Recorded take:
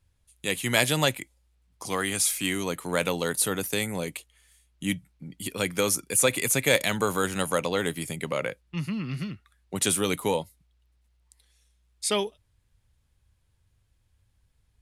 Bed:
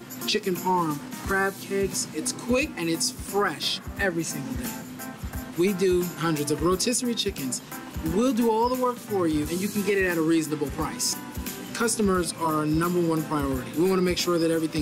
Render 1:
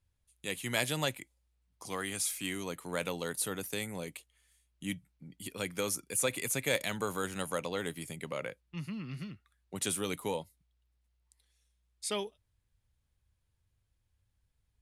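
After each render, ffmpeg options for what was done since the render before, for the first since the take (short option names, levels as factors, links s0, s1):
-af "volume=0.355"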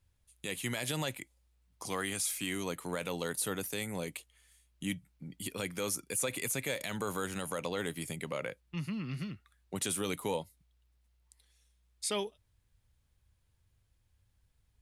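-filter_complex "[0:a]asplit=2[s0][s1];[s1]acompressor=threshold=0.00708:ratio=6,volume=0.708[s2];[s0][s2]amix=inputs=2:normalize=0,alimiter=limit=0.0708:level=0:latency=1:release=50"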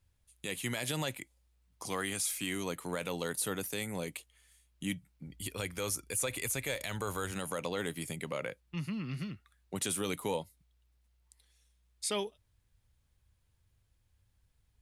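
-filter_complex "[0:a]asplit=3[s0][s1][s2];[s0]afade=t=out:st=5.25:d=0.02[s3];[s1]asubboost=boost=8:cutoff=65,afade=t=in:st=5.25:d=0.02,afade=t=out:st=7.31:d=0.02[s4];[s2]afade=t=in:st=7.31:d=0.02[s5];[s3][s4][s5]amix=inputs=3:normalize=0"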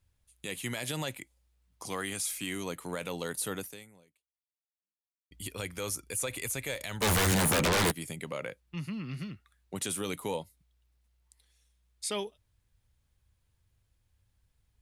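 -filter_complex "[0:a]asplit=3[s0][s1][s2];[s0]afade=t=out:st=7.01:d=0.02[s3];[s1]aeval=exprs='0.075*sin(PI/2*6.31*val(0)/0.075)':c=same,afade=t=in:st=7.01:d=0.02,afade=t=out:st=7.9:d=0.02[s4];[s2]afade=t=in:st=7.9:d=0.02[s5];[s3][s4][s5]amix=inputs=3:normalize=0,asplit=2[s6][s7];[s6]atrim=end=5.31,asetpts=PTS-STARTPTS,afade=t=out:st=3.59:d=1.72:c=exp[s8];[s7]atrim=start=5.31,asetpts=PTS-STARTPTS,afade=t=in:d=0.004:c=hsin[s9];[s8][s9]concat=n=2:v=0:a=1"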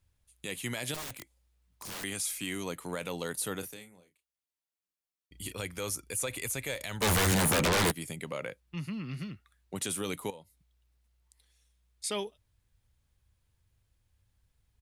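-filter_complex "[0:a]asettb=1/sr,asplit=3[s0][s1][s2];[s0]atrim=end=0.944[s3];[s1]atrim=start=0.94:end=2.04,asetpts=PTS-STARTPTS,afade=t=in:d=0.004:c=qsin,afade=t=out:st=1.096:d=0.004:c=qsin,aeval=exprs='(mod(56.2*val(0)+1,2)-1)/56.2':c=same[s4];[s2]atrim=start=2.036[s5];[s3][s4]acrossfade=d=0.004:c1=hsin:c2=qsin[s6];[s6][s5]acrossfade=d=0.004:c1=qsin:c2=hsin,asplit=3[s7][s8][s9];[s7]afade=t=out:st=3.61:d=0.02[s10];[s8]asplit=2[s11][s12];[s12]adelay=33,volume=0.376[s13];[s11][s13]amix=inputs=2:normalize=0,afade=t=in:st=3.61:d=0.02,afade=t=out:st=5.52:d=0.02[s14];[s9]afade=t=in:st=5.52:d=0.02[s15];[s10][s14][s15]amix=inputs=3:normalize=0,asettb=1/sr,asplit=3[s16][s17][s18];[s16]atrim=end=10.304[s19];[s17]atrim=start=10.3:end=12.04,asetpts=PTS-STARTPTS,afade=t=in:d=0.004:c=qsin,afade=t=out:st=1.736:d=0.004:c=qsin,acompressor=threshold=0.00141:ratio=2:attack=3.2:release=140:knee=1:detection=peak[s20];[s18]atrim=start=12.036[s21];[s19][s20]acrossfade=d=0.004:c1=hsin:c2=qsin[s22];[s22][s21]acrossfade=d=0.004:c1=qsin:c2=hsin"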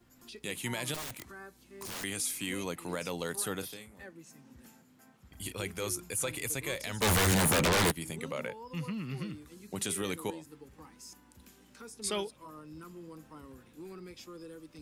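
-filter_complex "[1:a]volume=0.0631[s0];[0:a][s0]amix=inputs=2:normalize=0"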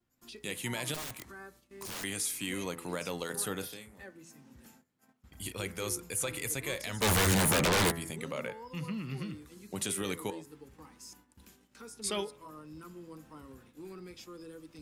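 -af "agate=range=0.158:threshold=0.00126:ratio=16:detection=peak,bandreject=f=83.85:t=h:w=4,bandreject=f=167.7:t=h:w=4,bandreject=f=251.55:t=h:w=4,bandreject=f=335.4:t=h:w=4,bandreject=f=419.25:t=h:w=4,bandreject=f=503.1:t=h:w=4,bandreject=f=586.95:t=h:w=4,bandreject=f=670.8:t=h:w=4,bandreject=f=754.65:t=h:w=4,bandreject=f=838.5:t=h:w=4,bandreject=f=922.35:t=h:w=4,bandreject=f=1006.2:t=h:w=4,bandreject=f=1090.05:t=h:w=4,bandreject=f=1173.9:t=h:w=4,bandreject=f=1257.75:t=h:w=4,bandreject=f=1341.6:t=h:w=4,bandreject=f=1425.45:t=h:w=4,bandreject=f=1509.3:t=h:w=4,bandreject=f=1593.15:t=h:w=4,bandreject=f=1677:t=h:w=4,bandreject=f=1760.85:t=h:w=4,bandreject=f=1844.7:t=h:w=4,bandreject=f=1928.55:t=h:w=4,bandreject=f=2012.4:t=h:w=4,bandreject=f=2096.25:t=h:w=4,bandreject=f=2180.1:t=h:w=4"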